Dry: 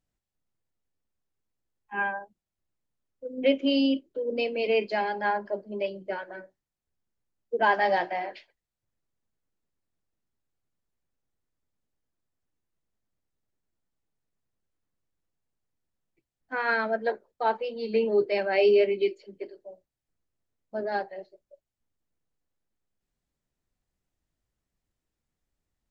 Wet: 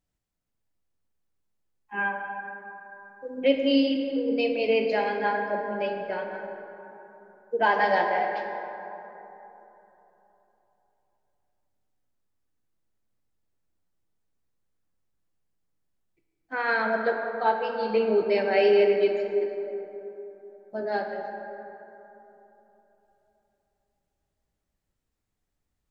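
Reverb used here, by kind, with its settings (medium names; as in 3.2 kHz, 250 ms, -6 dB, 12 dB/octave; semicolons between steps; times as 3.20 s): plate-style reverb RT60 3.5 s, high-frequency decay 0.4×, DRR 2.5 dB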